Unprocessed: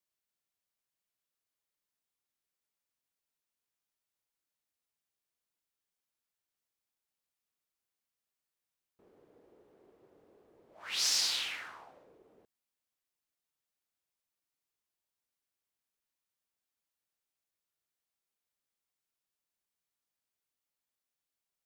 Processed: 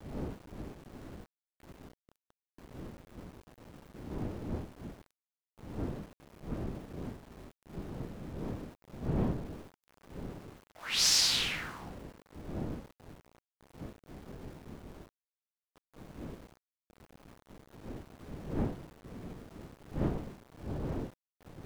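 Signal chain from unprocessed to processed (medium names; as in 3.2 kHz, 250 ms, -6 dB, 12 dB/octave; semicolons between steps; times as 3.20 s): wind noise 290 Hz -46 dBFS; small samples zeroed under -54 dBFS; trim +4 dB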